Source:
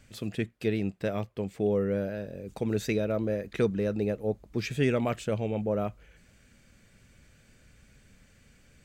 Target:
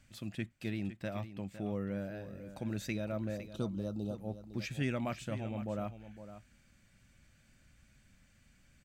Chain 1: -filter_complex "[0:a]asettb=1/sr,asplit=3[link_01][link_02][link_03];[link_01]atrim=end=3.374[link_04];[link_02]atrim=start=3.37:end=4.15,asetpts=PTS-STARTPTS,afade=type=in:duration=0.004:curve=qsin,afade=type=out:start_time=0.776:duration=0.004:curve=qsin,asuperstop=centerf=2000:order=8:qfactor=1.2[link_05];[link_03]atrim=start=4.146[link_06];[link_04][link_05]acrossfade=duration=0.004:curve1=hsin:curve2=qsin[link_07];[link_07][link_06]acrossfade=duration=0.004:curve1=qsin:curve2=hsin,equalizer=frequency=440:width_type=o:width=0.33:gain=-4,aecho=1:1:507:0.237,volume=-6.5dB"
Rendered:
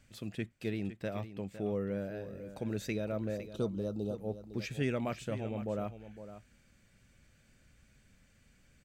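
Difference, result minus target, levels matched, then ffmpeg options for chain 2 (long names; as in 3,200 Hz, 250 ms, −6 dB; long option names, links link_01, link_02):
500 Hz band +3.0 dB
-filter_complex "[0:a]asettb=1/sr,asplit=3[link_01][link_02][link_03];[link_01]atrim=end=3.374[link_04];[link_02]atrim=start=3.37:end=4.15,asetpts=PTS-STARTPTS,afade=type=in:duration=0.004:curve=qsin,afade=type=out:start_time=0.776:duration=0.004:curve=qsin,asuperstop=centerf=2000:order=8:qfactor=1.2[link_05];[link_03]atrim=start=4.146[link_06];[link_04][link_05]acrossfade=duration=0.004:curve1=hsin:curve2=qsin[link_07];[link_07][link_06]acrossfade=duration=0.004:curve1=qsin:curve2=hsin,equalizer=frequency=440:width_type=o:width=0.33:gain=-15,aecho=1:1:507:0.237,volume=-6.5dB"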